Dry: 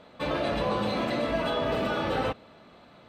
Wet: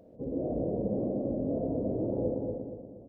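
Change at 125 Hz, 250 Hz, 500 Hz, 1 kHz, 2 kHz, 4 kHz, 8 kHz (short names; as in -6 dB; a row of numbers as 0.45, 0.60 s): -0.5 dB, +0.5 dB, -3.0 dB, -16.5 dB, under -40 dB, under -40 dB, n/a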